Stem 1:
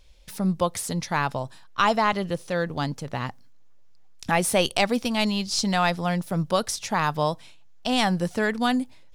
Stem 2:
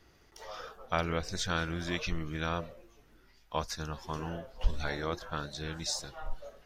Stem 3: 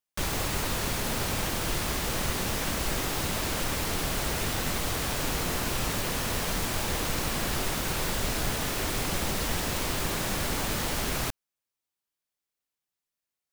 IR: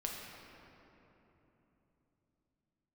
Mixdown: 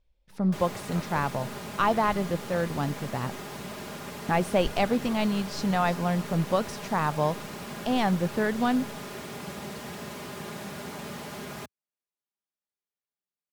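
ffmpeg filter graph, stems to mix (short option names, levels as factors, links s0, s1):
-filter_complex "[0:a]agate=range=0.2:threshold=0.01:ratio=16:detection=peak,volume=0.891,asplit=2[s0][s1];[1:a]volume=0.447[s2];[2:a]highpass=f=92:w=0.5412,highpass=f=92:w=1.3066,aemphasis=mode=production:type=cd,aecho=1:1:4.9:0.6,adelay=350,volume=0.501[s3];[s1]apad=whole_len=293649[s4];[s2][s4]sidechaingate=range=0.0224:threshold=0.0447:ratio=16:detection=peak[s5];[s0][s5][s3]amix=inputs=3:normalize=0,lowpass=f=1300:p=1"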